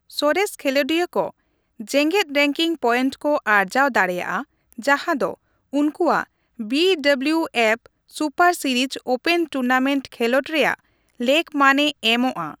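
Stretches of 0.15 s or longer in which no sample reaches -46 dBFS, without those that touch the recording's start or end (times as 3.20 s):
1.31–1.80 s
4.44–4.72 s
5.36–5.73 s
6.26–6.59 s
7.86–8.09 s
10.79–11.09 s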